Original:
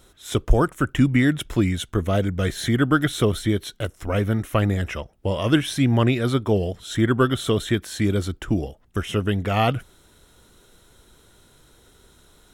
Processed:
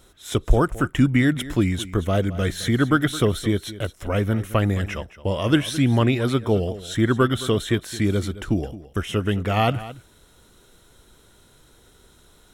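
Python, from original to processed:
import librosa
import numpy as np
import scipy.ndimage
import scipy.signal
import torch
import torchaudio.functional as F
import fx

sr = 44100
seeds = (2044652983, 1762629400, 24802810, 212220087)

y = x + 10.0 ** (-16.0 / 20.0) * np.pad(x, (int(217 * sr / 1000.0), 0))[:len(x)]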